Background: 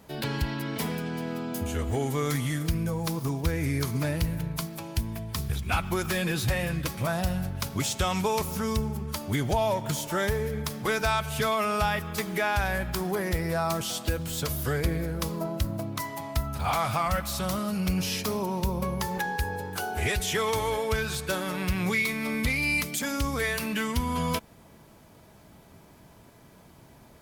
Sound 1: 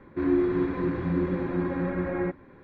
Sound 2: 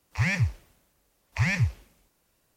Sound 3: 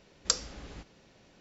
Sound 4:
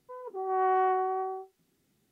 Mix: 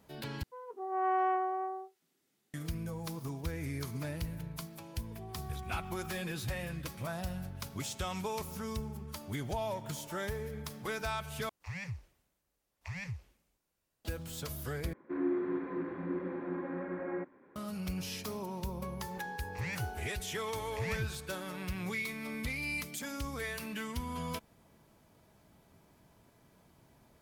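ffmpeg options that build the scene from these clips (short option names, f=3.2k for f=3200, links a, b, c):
-filter_complex "[4:a]asplit=2[a][b];[2:a]asplit=2[c][d];[0:a]volume=-10.5dB[e];[a]highpass=f=440:p=1[f];[b]alimiter=level_in=2dB:limit=-24dB:level=0:latency=1:release=71,volume=-2dB[g];[c]alimiter=limit=-19dB:level=0:latency=1:release=126[h];[1:a]acrossover=split=190 2700:gain=0.0794 1 0.141[i][j][k];[i][j][k]amix=inputs=3:normalize=0[l];[d]asoftclip=type=tanh:threshold=-19.5dB[m];[e]asplit=4[n][o][p][q];[n]atrim=end=0.434[r];[f]atrim=end=2.11,asetpts=PTS-STARTPTS,volume=-2.5dB[s];[o]atrim=start=2.536:end=11.494[t];[h]atrim=end=2.56,asetpts=PTS-STARTPTS,volume=-13.5dB[u];[p]atrim=start=14.046:end=14.934[v];[l]atrim=end=2.63,asetpts=PTS-STARTPTS,volume=-8dB[w];[q]atrim=start=17.556[x];[g]atrim=end=2.11,asetpts=PTS-STARTPTS,volume=-16dB,afade=t=in:d=0.004:c=hsin,afade=t=out:st=2.106:d=0.004:c=hsin,adelay=4840[y];[m]atrim=end=2.56,asetpts=PTS-STARTPTS,volume=-11dB,afade=t=in:d=0.004:c=hsin,afade=t=out:st=2.556:d=0.004:c=hsin,adelay=855540S[z];[r][s]acrossfade=d=0.004:c1=hsin:c2=hsin[aa];[aa][t]acrossfade=d=0.004:c1=hsin:c2=hsin[ab];[ab][u]acrossfade=d=0.004:c1=hsin:c2=hsin[ac];[ac][v]acrossfade=d=0.004:c1=hsin:c2=hsin[ad];[ad][w]acrossfade=d=0.004:c1=hsin:c2=hsin[ae];[ae][x]acrossfade=d=0.004:c1=hsin:c2=hsin[af];[af][y][z]amix=inputs=3:normalize=0"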